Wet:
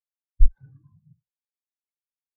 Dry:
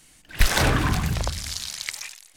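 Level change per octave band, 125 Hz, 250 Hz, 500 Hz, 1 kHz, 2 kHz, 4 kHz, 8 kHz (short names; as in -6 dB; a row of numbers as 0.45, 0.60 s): -9.0 dB, -30.5 dB, under -40 dB, under -40 dB, under -40 dB, under -40 dB, under -40 dB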